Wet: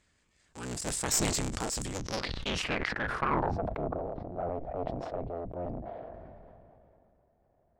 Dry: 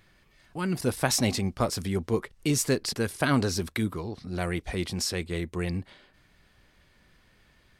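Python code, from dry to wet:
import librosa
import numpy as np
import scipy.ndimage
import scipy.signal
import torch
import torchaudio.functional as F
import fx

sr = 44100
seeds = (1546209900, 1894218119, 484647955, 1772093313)

y = fx.cycle_switch(x, sr, every=3, mode='inverted')
y = fx.filter_sweep_lowpass(y, sr, from_hz=7600.0, to_hz=670.0, start_s=1.9, end_s=3.64, q=6.0)
y = fx.tube_stage(y, sr, drive_db=9.0, bias=0.75)
y = fx.sustainer(y, sr, db_per_s=21.0)
y = F.gain(torch.from_numpy(y), -6.5).numpy()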